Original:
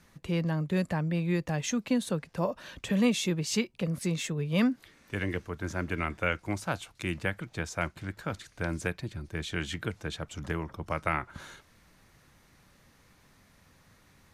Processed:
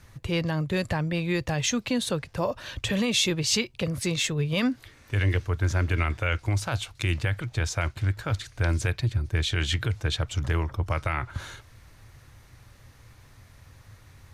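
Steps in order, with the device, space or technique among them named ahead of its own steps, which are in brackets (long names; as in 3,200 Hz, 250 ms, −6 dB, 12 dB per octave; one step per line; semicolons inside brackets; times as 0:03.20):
car stereo with a boomy subwoofer (low shelf with overshoot 140 Hz +6.5 dB, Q 3; brickwall limiter −21.5 dBFS, peak gain reduction 8 dB)
dynamic equaliser 3,900 Hz, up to +6 dB, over −51 dBFS, Q 0.87
level +5 dB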